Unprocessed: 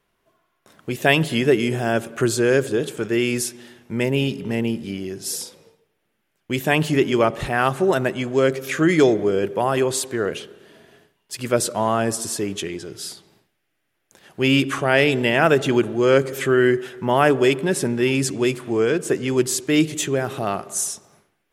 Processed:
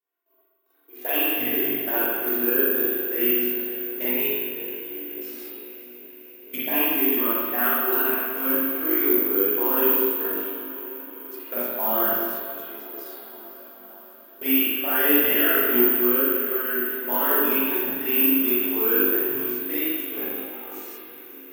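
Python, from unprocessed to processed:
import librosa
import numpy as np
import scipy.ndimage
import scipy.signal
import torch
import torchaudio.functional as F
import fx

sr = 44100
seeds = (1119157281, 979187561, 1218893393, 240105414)

y = scipy.ndimage.median_filter(x, 5, mode='constant')
y = scipy.signal.sosfilt(scipy.signal.butter(12, 240.0, 'highpass', fs=sr, output='sos'), y)
y = fx.level_steps(y, sr, step_db=22)
y = fx.env_flanger(y, sr, rest_ms=2.7, full_db=-14.5)
y = fx.echo_diffused(y, sr, ms=526, feedback_pct=69, wet_db=-15.5)
y = fx.rev_spring(y, sr, rt60_s=1.7, pass_ms=(41,), chirp_ms=25, drr_db=-9.0)
y = (np.kron(y[::3], np.eye(3)[0]) * 3)[:len(y)]
y = fx.detune_double(y, sr, cents=20)
y = F.gain(torch.from_numpy(y), -3.0).numpy()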